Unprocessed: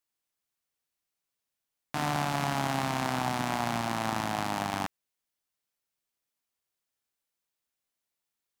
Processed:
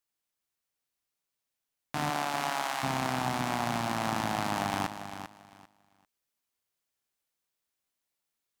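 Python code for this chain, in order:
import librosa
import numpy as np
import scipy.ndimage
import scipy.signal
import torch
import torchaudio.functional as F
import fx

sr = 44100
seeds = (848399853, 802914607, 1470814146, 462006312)

y = fx.highpass(x, sr, hz=fx.line((2.09, 230.0), (2.82, 960.0)), slope=12, at=(2.09, 2.82), fade=0.02)
y = fx.rider(y, sr, range_db=10, speed_s=0.5)
y = fx.echo_feedback(y, sr, ms=395, feedback_pct=21, wet_db=-10)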